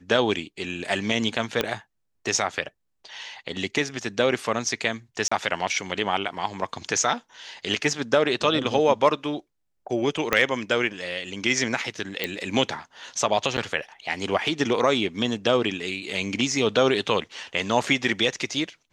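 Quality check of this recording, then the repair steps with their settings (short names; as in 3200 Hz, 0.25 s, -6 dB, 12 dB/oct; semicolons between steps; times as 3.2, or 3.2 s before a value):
1.61 pop -8 dBFS
5.28–5.32 gap 35 ms
10.33 pop -5 dBFS
12.24 pop -10 dBFS
13.57–13.58 gap 9.1 ms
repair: de-click; interpolate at 5.28, 35 ms; interpolate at 13.57, 9.1 ms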